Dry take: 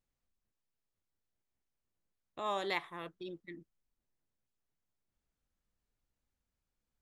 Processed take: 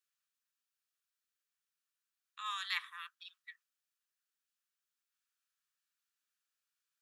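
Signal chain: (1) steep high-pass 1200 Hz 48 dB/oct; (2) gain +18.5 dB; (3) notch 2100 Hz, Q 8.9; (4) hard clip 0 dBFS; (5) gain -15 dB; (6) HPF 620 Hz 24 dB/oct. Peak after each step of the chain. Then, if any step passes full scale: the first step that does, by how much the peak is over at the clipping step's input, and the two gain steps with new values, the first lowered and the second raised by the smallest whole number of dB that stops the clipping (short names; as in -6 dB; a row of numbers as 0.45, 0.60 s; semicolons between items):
-22.0, -3.5, -5.0, -5.0, -20.0, -21.0 dBFS; no overload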